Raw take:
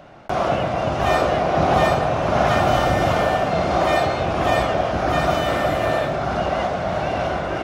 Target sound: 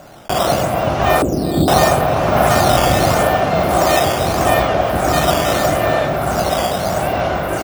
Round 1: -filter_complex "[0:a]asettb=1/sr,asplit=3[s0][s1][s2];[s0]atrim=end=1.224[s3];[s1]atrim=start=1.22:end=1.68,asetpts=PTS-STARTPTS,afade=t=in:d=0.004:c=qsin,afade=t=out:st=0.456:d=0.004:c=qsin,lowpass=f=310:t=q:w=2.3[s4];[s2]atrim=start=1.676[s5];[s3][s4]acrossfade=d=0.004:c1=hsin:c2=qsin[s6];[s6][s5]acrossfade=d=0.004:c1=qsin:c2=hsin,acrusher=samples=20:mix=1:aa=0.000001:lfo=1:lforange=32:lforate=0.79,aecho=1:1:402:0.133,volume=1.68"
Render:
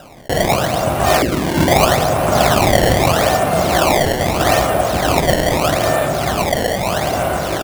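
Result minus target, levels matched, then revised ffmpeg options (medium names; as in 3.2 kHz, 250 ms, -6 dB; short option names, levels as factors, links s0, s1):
decimation with a swept rate: distortion +11 dB
-filter_complex "[0:a]asettb=1/sr,asplit=3[s0][s1][s2];[s0]atrim=end=1.224[s3];[s1]atrim=start=1.22:end=1.68,asetpts=PTS-STARTPTS,afade=t=in:d=0.004:c=qsin,afade=t=out:st=0.456:d=0.004:c=qsin,lowpass=f=310:t=q:w=2.3[s4];[s2]atrim=start=1.676[s5];[s3][s4]acrossfade=d=0.004:c1=hsin:c2=qsin[s6];[s6][s5]acrossfade=d=0.004:c1=qsin:c2=hsin,acrusher=samples=6:mix=1:aa=0.000001:lfo=1:lforange=9.6:lforate=0.79,aecho=1:1:402:0.133,volume=1.68"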